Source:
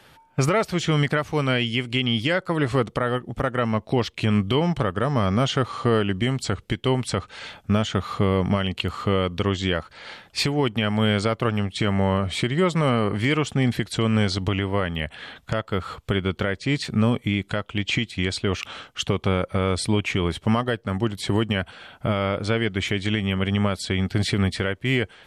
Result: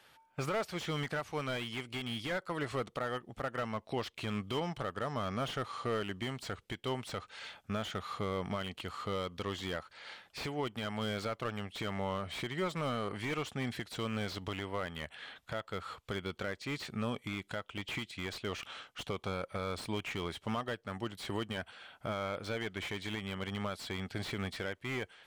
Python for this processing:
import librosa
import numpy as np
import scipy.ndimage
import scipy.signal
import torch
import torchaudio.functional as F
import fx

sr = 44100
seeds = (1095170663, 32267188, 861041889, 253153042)

y = fx.low_shelf(x, sr, hz=390.0, db=-10.5)
y = fx.slew_limit(y, sr, full_power_hz=90.0)
y = y * 10.0 ** (-8.5 / 20.0)